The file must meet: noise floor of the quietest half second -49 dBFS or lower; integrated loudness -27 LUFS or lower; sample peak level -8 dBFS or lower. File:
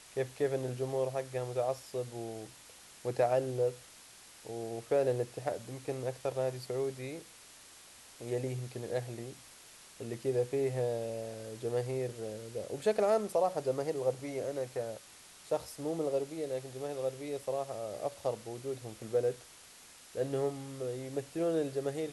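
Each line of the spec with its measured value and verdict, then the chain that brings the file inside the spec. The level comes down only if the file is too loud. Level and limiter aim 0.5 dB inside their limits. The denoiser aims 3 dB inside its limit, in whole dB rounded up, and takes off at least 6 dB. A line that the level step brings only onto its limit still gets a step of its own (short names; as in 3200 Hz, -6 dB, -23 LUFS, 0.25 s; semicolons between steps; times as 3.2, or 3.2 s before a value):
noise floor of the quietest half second -55 dBFS: OK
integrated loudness -35.5 LUFS: OK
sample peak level -17.5 dBFS: OK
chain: none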